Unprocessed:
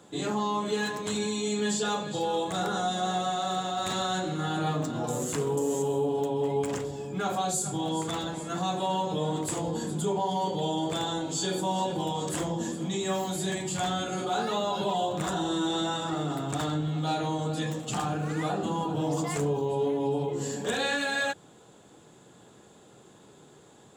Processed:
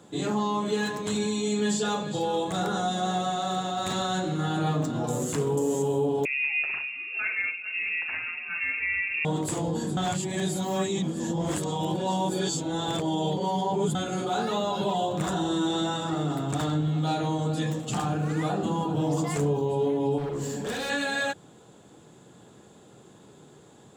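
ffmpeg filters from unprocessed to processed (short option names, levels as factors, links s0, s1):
-filter_complex "[0:a]asettb=1/sr,asplit=3[s0][s1][s2];[s0]atrim=end=6.254[s3];[s1]atrim=start=6.25:end=9.25,asetpts=PTS-STARTPTS,afade=t=in:d=0.004:c=qsin,afade=t=out:st=2.996:d=0.004:c=qsin,lowpass=f=2500:t=q:w=0.5098,lowpass=f=2500:t=q:w=0.6013,lowpass=f=2500:t=q:w=0.9,lowpass=f=2500:t=q:w=2.563,afreqshift=-2900[s4];[s2]atrim=start=9.246[s5];[s3][s4]acrossfade=d=0.004:c1=hsin:c2=qsin[s6];[s6][s5]acrossfade=d=0.004:c1=qsin:c2=hsin,asettb=1/sr,asplit=3[s7][s8][s9];[s7]atrim=end=20.184[s10];[s8]atrim=start=20.18:end=20.9,asetpts=PTS-STARTPTS,afade=t=in:d=0.004:c=qsin,afade=t=out:st=0.716:d=0.004:c=qsin,volume=31.6,asoftclip=hard,volume=0.0316[s11];[s9]atrim=start=20.896[s12];[s10][s11]acrossfade=d=0.004:c1=hsin:c2=qsin[s13];[s13][s12]acrossfade=d=0.004:c1=qsin:c2=hsin,asplit=3[s14][s15][s16];[s14]atrim=end=9.972[s17];[s15]atrim=start=9.968:end=13.952,asetpts=PTS-STARTPTS,areverse[s18];[s16]atrim=start=13.948[s19];[s17][s18]acrossfade=d=0.004:c1=hsin:c2=hsin[s20];[s20][s19]acrossfade=d=0.004:c1=hsin:c2=hsin,equalizer=f=140:t=o:w=2.9:g=4"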